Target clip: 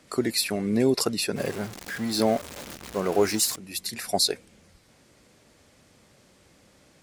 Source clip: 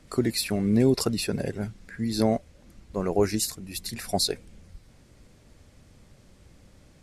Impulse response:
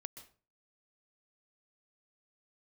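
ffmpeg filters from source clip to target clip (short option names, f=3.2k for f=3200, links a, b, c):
-filter_complex "[0:a]asettb=1/sr,asplit=3[a][b][c];[a]atrim=end=1.364[d];[b]atrim=start=1.36:end=3.56,asetpts=PTS-STARTPTS,afade=t=in:d=0.004:c=qsin,afade=t=out:st=2.196:d=0.004:c=qsin,aeval=exprs='val(0)+0.5*0.0211*sgn(val(0))':c=same[e];[c]atrim=start=3.556[f];[d][e]acrossfade=d=0.004:c1=hsin:c2=qsin[g];[g][f]acrossfade=d=0.004:c1=qsin:c2=hsin,highpass=f=360:p=1,volume=3dB"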